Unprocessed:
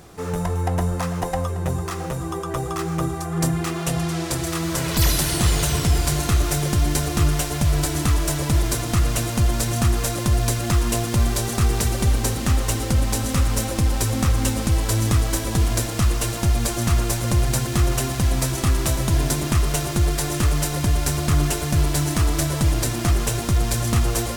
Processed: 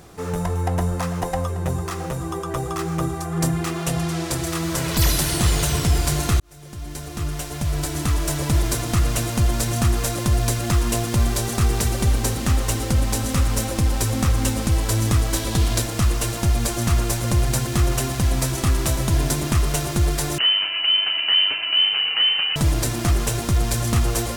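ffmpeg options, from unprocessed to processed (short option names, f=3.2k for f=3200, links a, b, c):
-filter_complex "[0:a]asettb=1/sr,asplit=3[a][b][c];[a]atrim=end=15.344[d];[b]atrim=start=15.34:end=15.82,asetpts=PTS-STARTPTS,afade=t=in:d=0.004:c=qsin,afade=t=out:st=0.476:d=0.004:c=qsin,equalizer=f=3.8k:w=1.5:g=5[e];[c]atrim=start=15.816[f];[d][e]acrossfade=d=0.004:c1=hsin:c2=qsin[g];[g][f]acrossfade=d=0.004:c1=qsin:c2=hsin,asettb=1/sr,asplit=3[h][i][j];[h]atrim=end=20.384[k];[i]atrim=start=20.38:end=22.56,asetpts=PTS-STARTPTS,afade=t=in:d=0.004:c=qsin,afade=t=out:st=2.176:d=0.004:c=qsin,lowpass=f=2.6k:t=q:w=0.5098,lowpass=f=2.6k:t=q:w=0.6013,lowpass=f=2.6k:t=q:w=0.9,lowpass=f=2.6k:t=q:w=2.563,afreqshift=-3100[l];[j]atrim=start=22.556[m];[k][l]acrossfade=d=0.004:c1=hsin:c2=qsin[n];[n][m]acrossfade=d=0.004:c1=qsin:c2=hsin,asplit=2[o][p];[o]atrim=end=6.4,asetpts=PTS-STARTPTS,afade=t=out:st=6.396:d=0.004:c=hsin[q];[p]atrim=start=6.4,asetpts=PTS-STARTPTS,afade=t=in:d=2.11[r];[q][r]concat=n=2:v=0:a=1"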